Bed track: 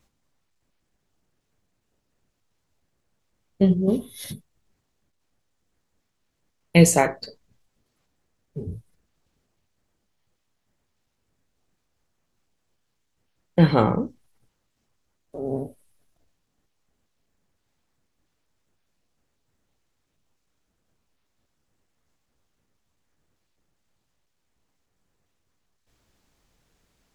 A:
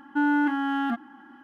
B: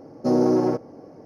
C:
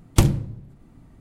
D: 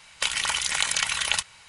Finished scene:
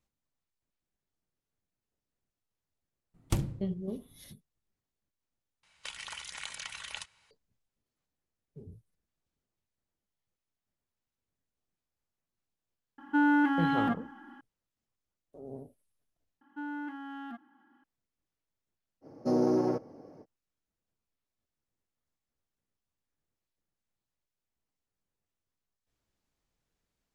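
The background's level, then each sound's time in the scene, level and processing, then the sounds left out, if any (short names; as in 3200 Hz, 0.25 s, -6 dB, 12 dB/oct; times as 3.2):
bed track -16 dB
3.14 add C -13.5 dB
5.63 replace with D -16 dB + high shelf 10000 Hz -9 dB
12.98 add A -2 dB
16.41 replace with A -16 dB
19.01 add B -7.5 dB, fades 0.05 s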